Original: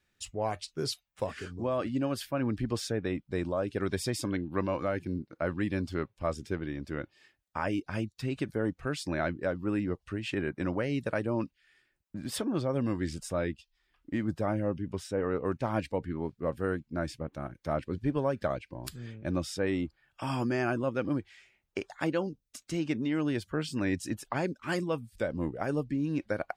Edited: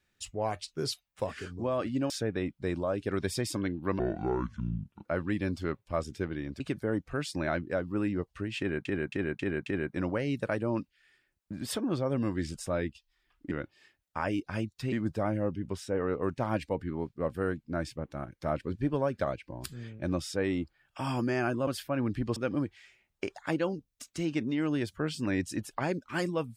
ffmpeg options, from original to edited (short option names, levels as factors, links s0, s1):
-filter_complex "[0:a]asplit=13[s0][s1][s2][s3][s4][s5][s6][s7][s8][s9][s10][s11][s12];[s0]atrim=end=2.102[s13];[s1]atrim=start=2.788:end=4.684[s14];[s2]atrim=start=4.68:end=5.36,asetpts=PTS-STARTPTS,asetrate=28224,aresample=44100,atrim=end_sample=46856,asetpts=PTS-STARTPTS[s15];[s3]atrim=start=5.356:end=6.912[s16];[s4]atrim=start=8.318:end=10.572[s17];[s5]atrim=start=10.298:end=10.572[s18];[s6]atrim=start=10.298:end=10.572[s19];[s7]atrim=start=10.298:end=10.572[s20];[s8]atrim=start=10.298:end=14.152[s21];[s9]atrim=start=6.908:end=8.322[s22];[s10]atrim=start=14.148:end=20.902[s23];[s11]atrim=start=2.098:end=2.792[s24];[s12]atrim=start=20.898[s25];[s13][s14]acrossfade=d=0.004:c1=hsin:c2=hsin[s26];[s26][s15]acrossfade=d=0.004:c1=hsin:c2=hsin[s27];[s27][s16]acrossfade=d=0.004:c1=hsin:c2=hsin[s28];[s28][s17]acrossfade=d=0.004:c1=hsin:c2=hsin[s29];[s29][s18]acrossfade=d=0.004:c1=hsin:c2=hsin[s30];[s30][s19]acrossfade=d=0.004:c1=hsin:c2=hsin[s31];[s31][s20]acrossfade=d=0.004:c1=hsin:c2=hsin[s32];[s32][s21]acrossfade=d=0.004:c1=hsin:c2=hsin[s33];[s33][s22]acrossfade=d=0.004:c1=hsin:c2=hsin[s34];[s34][s23]acrossfade=d=0.004:c1=hsin:c2=hsin[s35];[s35][s24]acrossfade=d=0.004:c1=hsin:c2=hsin[s36];[s36][s25]acrossfade=d=0.004:c1=hsin:c2=hsin"